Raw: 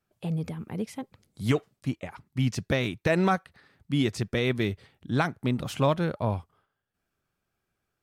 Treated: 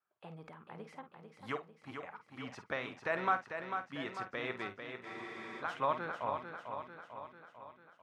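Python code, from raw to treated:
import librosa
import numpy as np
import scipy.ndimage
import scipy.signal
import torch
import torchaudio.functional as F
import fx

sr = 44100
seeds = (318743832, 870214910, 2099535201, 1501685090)

y = fx.bandpass_q(x, sr, hz=1200.0, q=1.7)
y = fx.doubler(y, sr, ms=49.0, db=-11.0)
y = fx.echo_feedback(y, sr, ms=446, feedback_pct=57, wet_db=-7.0)
y = fx.spec_freeze(y, sr, seeds[0], at_s=5.07, hold_s=0.54)
y = y * 10.0 ** (-2.0 / 20.0)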